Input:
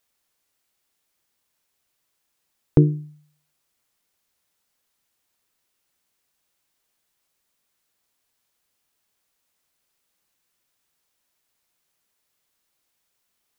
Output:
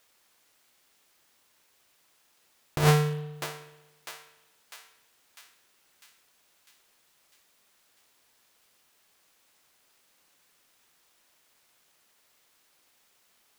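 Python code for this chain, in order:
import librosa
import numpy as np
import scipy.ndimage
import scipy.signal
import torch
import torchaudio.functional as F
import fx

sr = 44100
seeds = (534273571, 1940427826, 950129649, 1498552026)

p1 = fx.halfwave_hold(x, sr)
p2 = fx.low_shelf(p1, sr, hz=190.0, db=-8.5)
p3 = p2 + fx.echo_thinned(p2, sr, ms=650, feedback_pct=61, hz=1100.0, wet_db=-20.5, dry=0)
p4 = fx.over_compress(p3, sr, threshold_db=-22.0, ratio=-1.0)
y = fx.rev_spring(p4, sr, rt60_s=1.1, pass_ms=(60,), chirp_ms=55, drr_db=11.5)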